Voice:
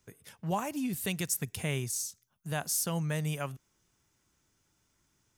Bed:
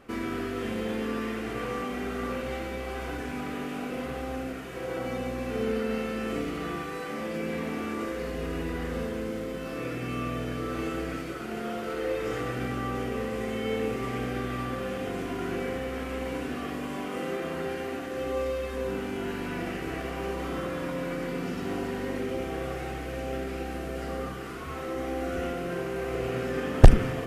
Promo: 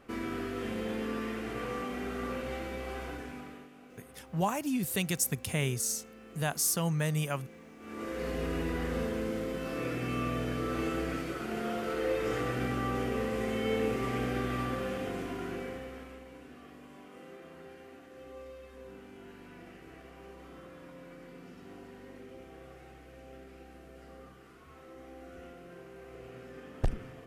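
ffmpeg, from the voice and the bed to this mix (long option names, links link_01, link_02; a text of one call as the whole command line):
ffmpeg -i stem1.wav -i stem2.wav -filter_complex "[0:a]adelay=3900,volume=2dB[link_01];[1:a]volume=15dB,afade=type=out:start_time=2.93:duration=0.77:silence=0.158489,afade=type=in:start_time=7.79:duration=0.51:silence=0.112202,afade=type=out:start_time=14.62:duration=1.63:silence=0.149624[link_02];[link_01][link_02]amix=inputs=2:normalize=0" out.wav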